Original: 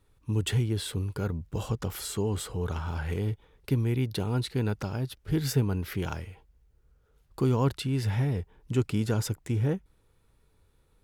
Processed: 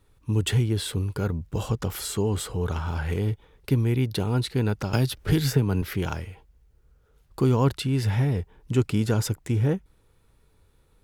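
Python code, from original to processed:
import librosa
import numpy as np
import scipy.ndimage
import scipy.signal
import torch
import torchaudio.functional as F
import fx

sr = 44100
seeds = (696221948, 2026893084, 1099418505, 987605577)

y = fx.band_squash(x, sr, depth_pct=100, at=(4.93, 5.82))
y = y * librosa.db_to_amplitude(4.0)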